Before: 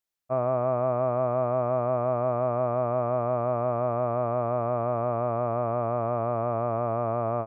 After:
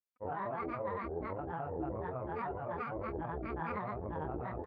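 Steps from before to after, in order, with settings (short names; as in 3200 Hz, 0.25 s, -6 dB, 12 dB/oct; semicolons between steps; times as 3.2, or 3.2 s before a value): chorus voices 2, 0.34 Hz, delay 26 ms, depth 1.5 ms; grains 0.211 s, grains 15/s, pitch spread up and down by 12 st; tempo 1.6×; gain -6.5 dB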